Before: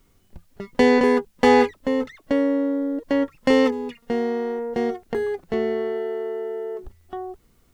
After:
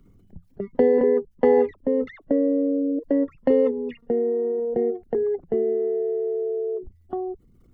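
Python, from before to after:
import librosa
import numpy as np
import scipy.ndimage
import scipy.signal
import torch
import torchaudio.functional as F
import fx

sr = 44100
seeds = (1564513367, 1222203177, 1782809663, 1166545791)

y = fx.envelope_sharpen(x, sr, power=2.0)
y = fx.band_squash(y, sr, depth_pct=40)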